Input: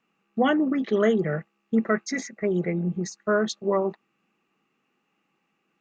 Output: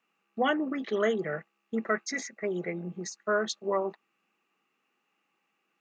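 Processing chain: high-pass 550 Hz 6 dB/octave; trim -1.5 dB

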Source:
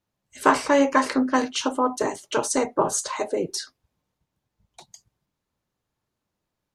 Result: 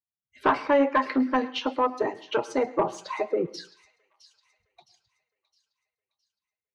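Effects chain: expander on every frequency bin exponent 1.5; high-pass 270 Hz 6 dB/octave; in parallel at 0 dB: compression, threshold -29 dBFS, peak gain reduction 14.5 dB; on the sum: saturation -13 dBFS, distortion -15 dB; distance through air 300 m; feedback echo behind a high-pass 663 ms, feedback 42%, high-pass 3.5 kHz, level -14 dB; on a send at -17.5 dB: reverberation RT60 0.45 s, pre-delay 103 ms; on the sum: trim +1 dB

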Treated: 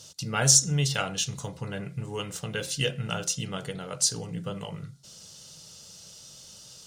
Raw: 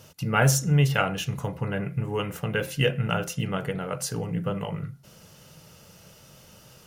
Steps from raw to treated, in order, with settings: high-order bell 5.5 kHz +15.5 dB; trim -6 dB

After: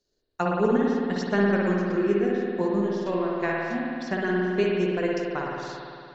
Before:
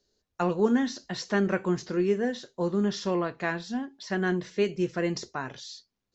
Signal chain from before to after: transient shaper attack +7 dB, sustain -9 dB; spring tank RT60 2.5 s, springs 55 ms, chirp 20 ms, DRR -3.5 dB; trim -4.5 dB

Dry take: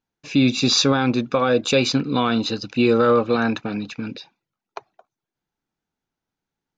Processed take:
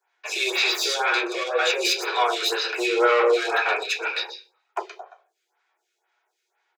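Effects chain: delay 124 ms -11 dB; 1.43–2.22 s: compressor with a negative ratio -27 dBFS, ratio -1; peak limiter -14.5 dBFS, peak gain reduction 8.5 dB; bass shelf 500 Hz -4.5 dB; overdrive pedal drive 22 dB, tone 4.1 kHz, clips at -12 dBFS; Chebyshev high-pass 350 Hz, order 10; reverberation RT60 0.40 s, pre-delay 3 ms, DRR -4.5 dB; lamp-driven phase shifter 2 Hz

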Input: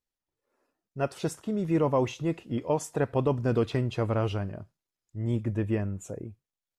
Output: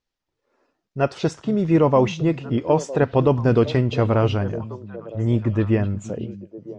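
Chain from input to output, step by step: low-pass 6.1 kHz 24 dB/octave; on a send: repeats whose band climbs or falls 480 ms, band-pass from 170 Hz, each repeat 1.4 oct, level -9.5 dB; on the sum: trim +8.5 dB

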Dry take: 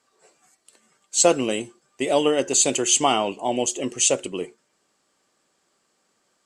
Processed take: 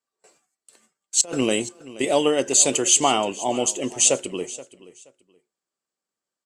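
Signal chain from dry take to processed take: gate with hold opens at -46 dBFS; treble shelf 7.7 kHz +5.5 dB; 1.21–2.05 s: compressor with a negative ratio -23 dBFS, ratio -0.5; on a send: feedback delay 476 ms, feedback 22%, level -18 dB

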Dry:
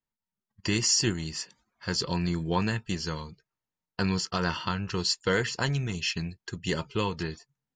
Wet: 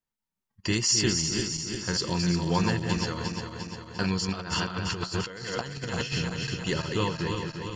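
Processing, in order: backward echo that repeats 175 ms, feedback 76%, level -5.5 dB; 4.28–6.15 s: compressor with a negative ratio -31 dBFS, ratio -0.5

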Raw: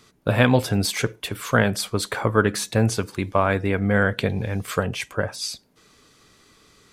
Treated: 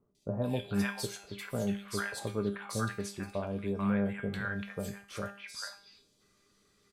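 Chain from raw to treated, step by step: feedback comb 200 Hz, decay 0.43 s, harmonics all, mix 80%; three bands offset in time lows, highs, mids 150/440 ms, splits 890/3000 Hz; trim -2.5 dB

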